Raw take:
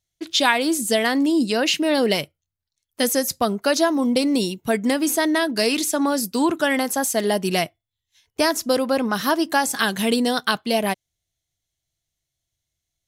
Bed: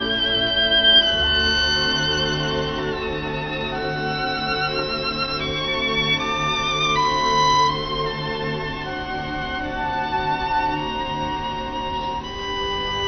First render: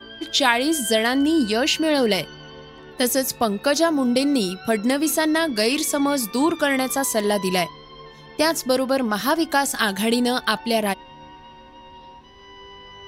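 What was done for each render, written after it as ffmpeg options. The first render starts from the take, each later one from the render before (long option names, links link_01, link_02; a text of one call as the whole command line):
ffmpeg -i in.wav -i bed.wav -filter_complex "[1:a]volume=-18dB[link_01];[0:a][link_01]amix=inputs=2:normalize=0" out.wav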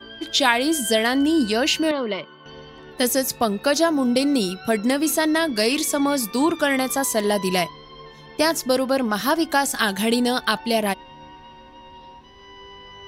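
ffmpeg -i in.wav -filter_complex "[0:a]asettb=1/sr,asplit=3[link_01][link_02][link_03];[link_01]atrim=end=1.914[link_04];[link_02]atrim=start=1.91:end=2.46,asetpts=PTS-STARTPTS,afade=type=in:duration=0.004:curve=qsin,afade=type=out:start_time=0.546:duration=0.004:curve=qsin,highpass=280,equalizer=frequency=280:width_type=q:width=4:gain=-4,equalizer=frequency=460:width_type=q:width=4:gain=-7,equalizer=frequency=760:width_type=q:width=4:gain=-10,equalizer=frequency=1100:width_type=q:width=4:gain=6,equalizer=frequency=1700:width_type=q:width=4:gain=-10,equalizer=frequency=2600:width_type=q:width=4:gain=-8,lowpass=frequency=2900:width=0.5412,lowpass=frequency=2900:width=1.3066[link_05];[link_03]atrim=start=2.456[link_06];[link_04][link_05]acrossfade=duration=0.004:curve1=hsin:curve2=qsin[link_07];[link_07][link_06]acrossfade=duration=0.004:curve1=qsin:curve2=hsin" out.wav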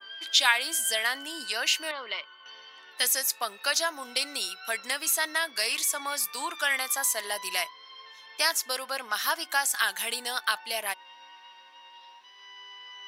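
ffmpeg -i in.wav -af "highpass=1400,adynamicequalizer=threshold=0.0126:dfrequency=3800:dqfactor=0.74:tfrequency=3800:tqfactor=0.74:attack=5:release=100:ratio=0.375:range=3:mode=cutabove:tftype=bell" out.wav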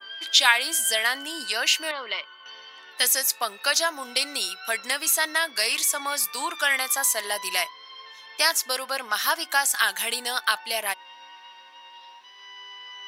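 ffmpeg -i in.wav -af "volume=4dB" out.wav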